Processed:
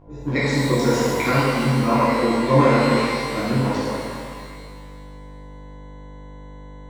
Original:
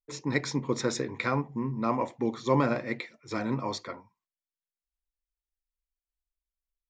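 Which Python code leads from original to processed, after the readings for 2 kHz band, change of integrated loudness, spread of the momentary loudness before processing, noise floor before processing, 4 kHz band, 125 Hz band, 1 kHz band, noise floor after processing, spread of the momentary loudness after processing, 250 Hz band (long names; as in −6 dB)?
+11.5 dB, +11.0 dB, 10 LU, below −85 dBFS, +11.0 dB, +12.5 dB, +11.0 dB, −39 dBFS, 16 LU, +10.5 dB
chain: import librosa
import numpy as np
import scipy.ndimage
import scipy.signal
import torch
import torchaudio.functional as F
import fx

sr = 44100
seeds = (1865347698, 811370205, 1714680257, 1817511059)

y = fx.wiener(x, sr, points=41)
y = fx.dmg_buzz(y, sr, base_hz=50.0, harmonics=21, level_db=-49.0, tilt_db=-6, odd_only=False)
y = fx.rev_shimmer(y, sr, seeds[0], rt60_s=1.8, semitones=12, shimmer_db=-8, drr_db=-11.0)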